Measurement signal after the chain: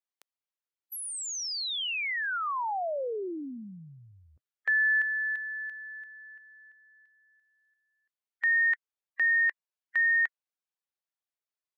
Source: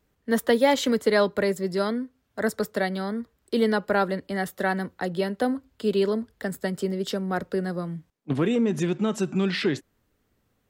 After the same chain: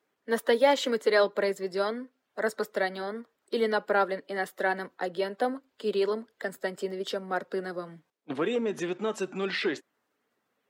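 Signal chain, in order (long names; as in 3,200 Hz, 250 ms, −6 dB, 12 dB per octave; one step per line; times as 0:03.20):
spectral magnitudes quantised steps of 15 dB
high-pass filter 400 Hz 12 dB per octave
high-shelf EQ 6,100 Hz −8.5 dB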